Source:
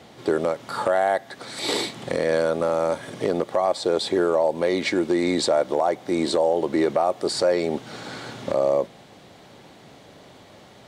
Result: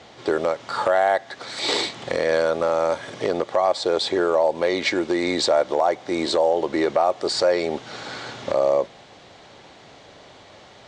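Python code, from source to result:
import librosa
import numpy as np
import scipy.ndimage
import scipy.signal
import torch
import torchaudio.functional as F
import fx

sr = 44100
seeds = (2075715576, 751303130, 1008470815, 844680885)

y = scipy.signal.sosfilt(scipy.signal.butter(4, 7300.0, 'lowpass', fs=sr, output='sos'), x)
y = fx.peak_eq(y, sr, hz=190.0, db=-8.0, octaves=2.0)
y = F.gain(torch.from_numpy(y), 3.5).numpy()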